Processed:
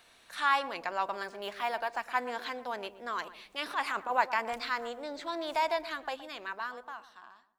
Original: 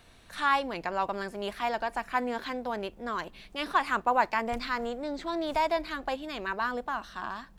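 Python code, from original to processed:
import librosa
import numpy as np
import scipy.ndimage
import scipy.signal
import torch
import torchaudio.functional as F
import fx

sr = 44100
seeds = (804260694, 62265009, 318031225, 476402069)

y = fx.fade_out_tail(x, sr, length_s=1.78)
y = fx.low_shelf(y, sr, hz=150.0, db=-11.0)
y = fx.transient(y, sr, attack_db=-11, sustain_db=2, at=(3.59, 4.18))
y = fx.low_shelf(y, sr, hz=400.0, db=-10.5)
y = fx.echo_filtered(y, sr, ms=119, feedback_pct=39, hz=1000.0, wet_db=-12.5)
y = fx.resample_linear(y, sr, factor=3, at=(1.23, 1.97))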